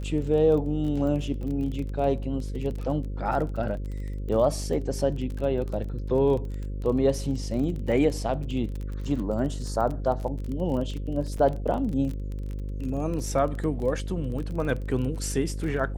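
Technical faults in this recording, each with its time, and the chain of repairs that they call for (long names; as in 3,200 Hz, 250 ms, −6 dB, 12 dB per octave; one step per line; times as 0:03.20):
mains buzz 50 Hz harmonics 11 −32 dBFS
surface crackle 27 per second −32 dBFS
0:11.38: drop-out 4.1 ms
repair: click removal
hum removal 50 Hz, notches 11
repair the gap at 0:11.38, 4.1 ms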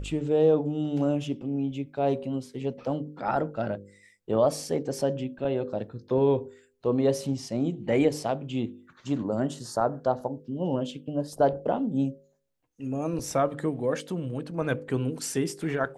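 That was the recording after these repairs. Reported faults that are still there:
none of them is left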